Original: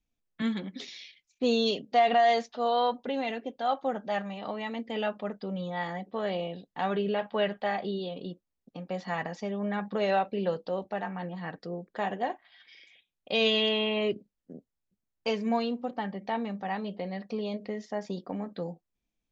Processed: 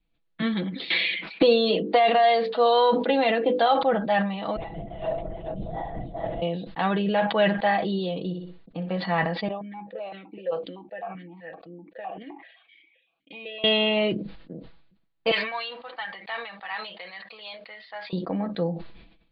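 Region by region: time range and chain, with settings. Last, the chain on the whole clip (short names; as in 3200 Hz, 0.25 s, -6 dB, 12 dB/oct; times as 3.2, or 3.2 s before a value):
0.9–3.83 elliptic high-pass 180 Hz + notches 50/100/150/200/250/300/350/400/450/500 Hz + three-band squash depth 100%
4.56–6.42 EQ curve 110 Hz 0 dB, 450 Hz -22 dB, 700 Hz -2 dB, 1200 Hz -27 dB, 1800 Hz -18 dB, 2900 Hz -22 dB, 5800 Hz -9 dB + tapped delay 44/69/377/431 ms -4/-11.5/-15.5/-3.5 dB + LPC vocoder at 8 kHz whisper
8.19–8.98 air absorption 110 m + flutter echo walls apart 10.5 m, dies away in 0.28 s
9.48–13.64 compressor, threshold -27 dBFS + vowel sequencer 7.8 Hz
15.31–18.13 Butterworth band-pass 2600 Hz, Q 0.6 + short-mantissa float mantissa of 2-bit
whole clip: steep low-pass 4500 Hz 96 dB/oct; comb 6.1 ms, depth 58%; sustainer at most 67 dB/s; gain +5.5 dB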